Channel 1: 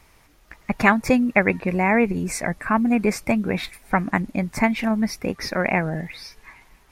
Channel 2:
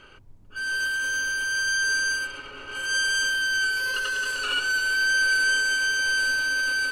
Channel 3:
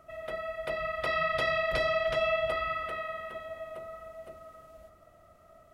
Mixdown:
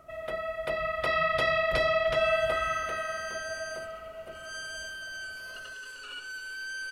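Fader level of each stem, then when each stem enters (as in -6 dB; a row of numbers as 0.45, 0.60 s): off, -15.5 dB, +2.5 dB; off, 1.60 s, 0.00 s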